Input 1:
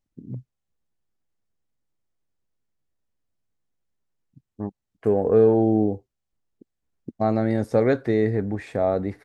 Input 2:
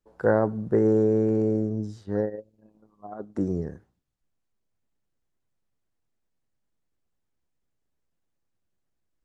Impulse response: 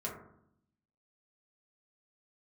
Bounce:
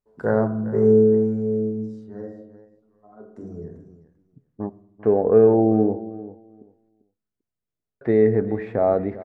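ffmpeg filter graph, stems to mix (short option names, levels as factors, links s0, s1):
-filter_complex "[0:a]lowpass=1700,lowshelf=f=160:g=-7,volume=0.562,asplit=3[s0][s1][s2];[s0]atrim=end=6.89,asetpts=PTS-STARTPTS,afade=t=out:st=6.886:d=0.004:c=hsin[s3];[s1]atrim=start=6.89:end=8.01,asetpts=PTS-STARTPTS,volume=0[s4];[s2]atrim=start=8.01,asetpts=PTS-STARTPTS,afade=t=in:d=0.004:c=hsin[s5];[s3][s4][s5]concat=n=3:v=0:a=1,asplit=4[s6][s7][s8][s9];[s7]volume=0.141[s10];[s8]volume=0.168[s11];[1:a]volume=0.668,afade=t=out:st=0.86:d=0.22:silence=0.316228,asplit=3[s12][s13][s14];[s13]volume=0.447[s15];[s14]volume=0.133[s16];[s9]apad=whole_len=407495[s17];[s12][s17]sidechaingate=range=0.178:threshold=0.00251:ratio=16:detection=peak[s18];[2:a]atrim=start_sample=2205[s19];[s10][s15]amix=inputs=2:normalize=0[s20];[s20][s19]afir=irnorm=-1:irlink=0[s21];[s11][s16]amix=inputs=2:normalize=0,aecho=0:1:394|788|1182:1|0.16|0.0256[s22];[s6][s18][s21][s22]amix=inputs=4:normalize=0,dynaudnorm=f=460:g=3:m=2.51"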